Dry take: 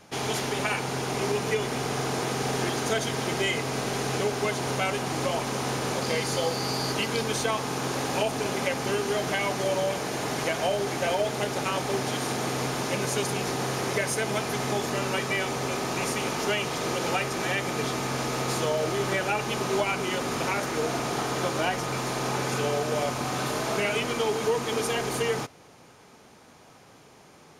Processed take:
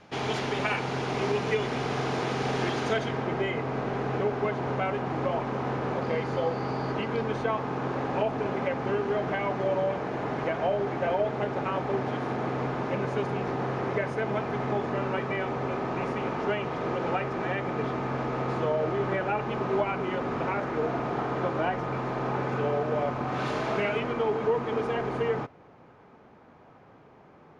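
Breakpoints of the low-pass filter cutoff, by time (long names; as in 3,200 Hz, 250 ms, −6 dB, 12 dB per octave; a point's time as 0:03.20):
0:02.84 3,600 Hz
0:03.24 1,600 Hz
0:23.27 1,600 Hz
0:23.48 3,300 Hz
0:24.14 1,600 Hz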